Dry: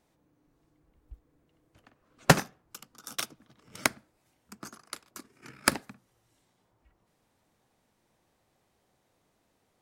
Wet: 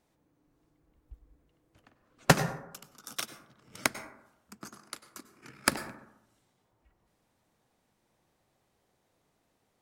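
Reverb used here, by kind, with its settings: plate-style reverb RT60 0.83 s, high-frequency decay 0.35×, pre-delay 85 ms, DRR 12 dB; gain -2 dB

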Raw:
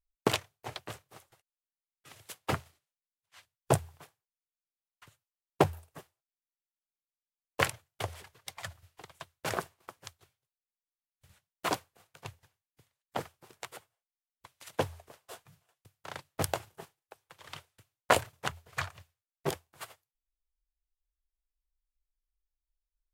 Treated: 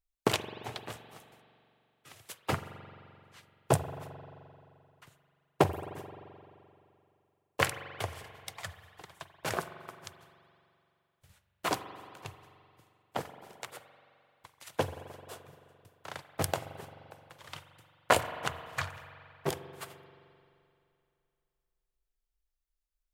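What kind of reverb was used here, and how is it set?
spring tank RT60 2.6 s, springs 43 ms, chirp 40 ms, DRR 10.5 dB

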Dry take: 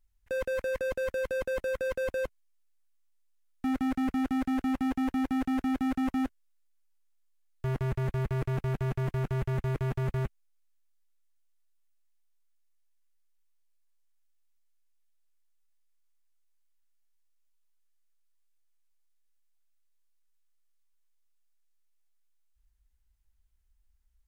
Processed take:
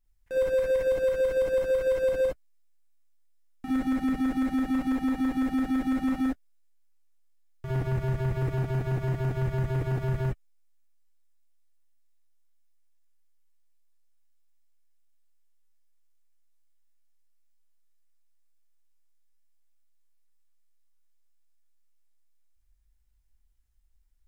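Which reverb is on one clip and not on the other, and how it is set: non-linear reverb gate 80 ms rising, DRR -4 dB; gain -4.5 dB

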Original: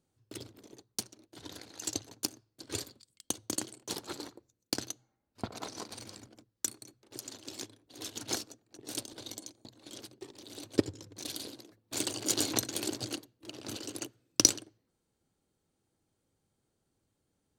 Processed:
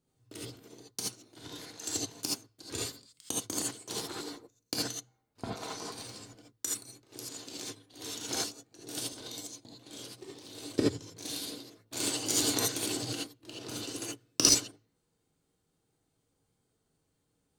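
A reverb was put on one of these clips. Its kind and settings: non-linear reverb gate 0.1 s rising, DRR -5 dB; gain -3.5 dB

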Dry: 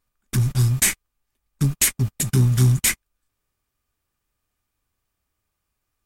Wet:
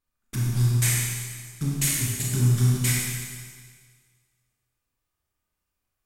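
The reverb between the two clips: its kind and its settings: Schroeder reverb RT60 1.7 s, combs from 25 ms, DRR -4 dB; gain -9 dB

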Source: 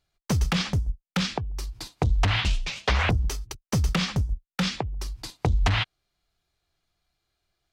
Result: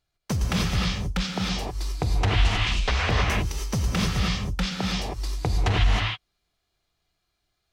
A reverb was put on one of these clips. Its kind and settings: non-linear reverb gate 0.34 s rising, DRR -2 dB; gain -2.5 dB

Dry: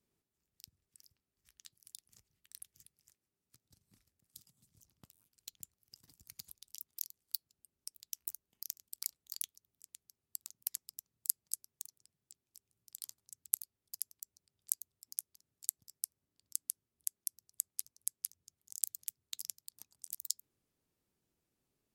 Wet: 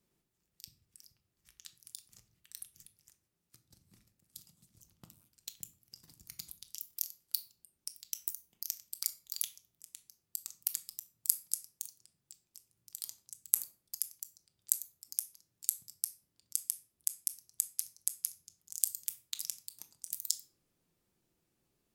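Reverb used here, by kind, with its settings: shoebox room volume 520 m³, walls furnished, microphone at 0.86 m; gain +4 dB

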